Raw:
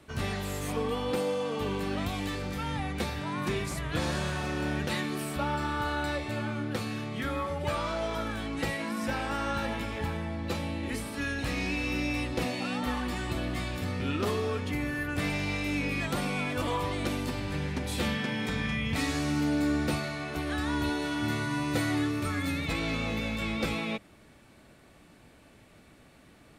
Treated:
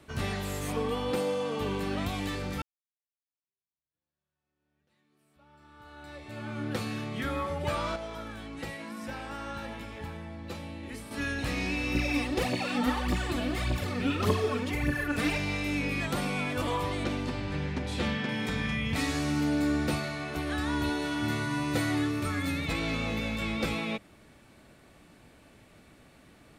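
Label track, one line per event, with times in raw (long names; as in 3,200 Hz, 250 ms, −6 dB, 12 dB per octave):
2.620000	6.670000	fade in exponential
7.960000	11.110000	clip gain −7 dB
11.950000	15.380000	phase shifter 1.7 Hz, delay 4.7 ms, feedback 63%
17.040000	18.290000	high-frequency loss of the air 69 metres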